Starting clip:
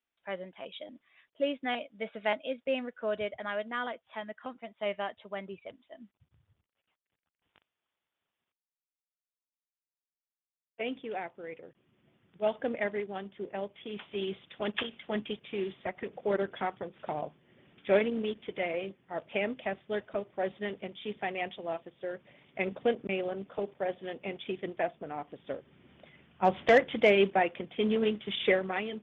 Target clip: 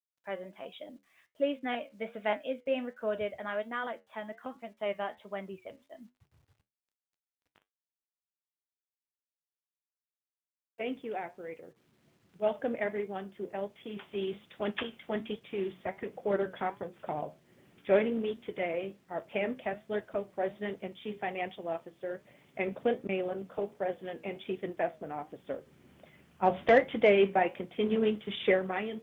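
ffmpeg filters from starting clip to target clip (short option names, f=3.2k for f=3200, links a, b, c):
-af "lowpass=f=2.3k:p=1,acrusher=bits=11:mix=0:aa=0.000001,flanger=delay=9.7:depth=4.1:regen=-70:speed=1.3:shape=triangular,volume=4.5dB"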